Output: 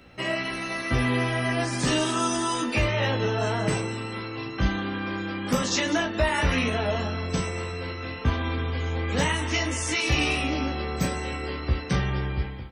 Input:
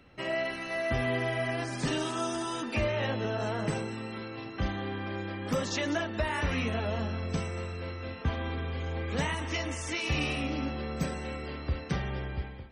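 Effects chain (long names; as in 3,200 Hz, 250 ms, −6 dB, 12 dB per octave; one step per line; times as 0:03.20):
high-shelf EQ 4,900 Hz +5.5 dB
on a send: ambience of single reflections 16 ms −4 dB, 37 ms −9.5 dB
on the sum: level +4.5 dB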